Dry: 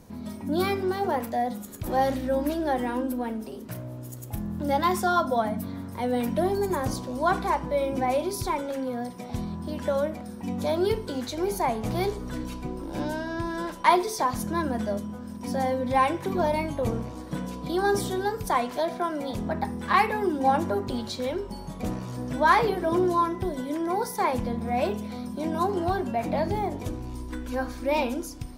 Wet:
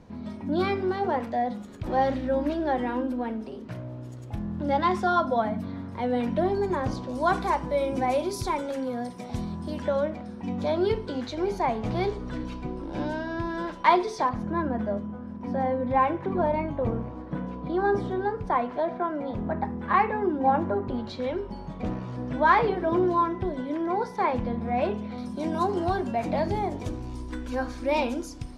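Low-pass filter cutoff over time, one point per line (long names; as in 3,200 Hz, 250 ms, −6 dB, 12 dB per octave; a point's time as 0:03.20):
3,700 Hz
from 0:07.09 9,000 Hz
from 0:09.82 4,000 Hz
from 0:14.29 1,800 Hz
from 0:21.07 3,000 Hz
from 0:25.18 7,600 Hz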